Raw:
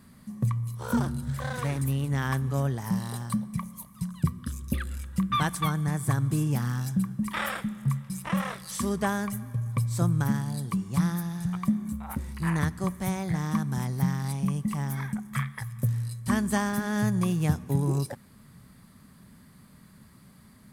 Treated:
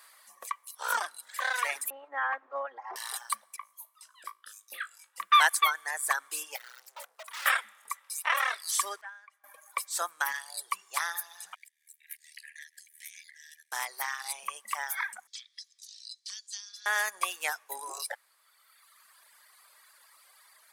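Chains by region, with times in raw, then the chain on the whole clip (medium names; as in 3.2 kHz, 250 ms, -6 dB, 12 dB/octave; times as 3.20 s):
1.90–2.96 s: comb filter that takes the minimum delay 3.7 ms + low-pass 1.1 kHz
3.56–5.20 s: treble shelf 4.3 kHz -3.5 dB + feedback comb 53 Hz, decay 0.29 s, mix 90%
6.56–7.46 s: integer overflow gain 23.5 dB + valve stage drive 43 dB, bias 0.55
9.01–9.44 s: low-pass 1.8 kHz + differentiator
11.54–13.72 s: compression 8:1, threshold -35 dBFS + ring modulator 38 Hz + brick-wall FIR high-pass 1.6 kHz
15.27–16.86 s: Butterworth band-pass 4.8 kHz, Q 2.1 + three bands compressed up and down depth 70%
whole clip: reverb removal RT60 1.9 s; Bessel high-pass 1 kHz, order 6; dynamic bell 1.9 kHz, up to +5 dB, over -51 dBFS, Q 1.2; trim +7 dB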